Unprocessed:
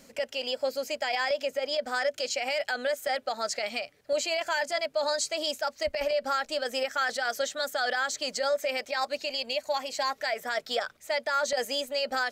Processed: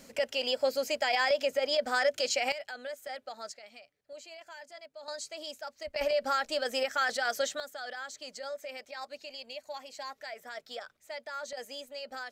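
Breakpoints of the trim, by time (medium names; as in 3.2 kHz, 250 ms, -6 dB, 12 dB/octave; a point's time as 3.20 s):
+1 dB
from 2.52 s -11 dB
from 3.52 s -19 dB
from 5.08 s -11 dB
from 5.96 s -1 dB
from 7.60 s -12 dB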